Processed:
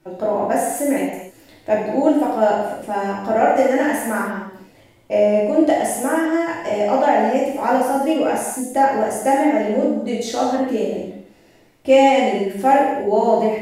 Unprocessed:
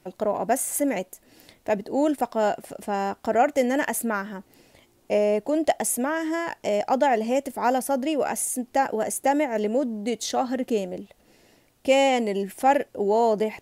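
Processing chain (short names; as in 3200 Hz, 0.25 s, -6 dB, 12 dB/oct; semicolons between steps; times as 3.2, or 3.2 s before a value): high shelf 2900 Hz -7.5 dB; non-linear reverb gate 0.32 s falling, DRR -6 dB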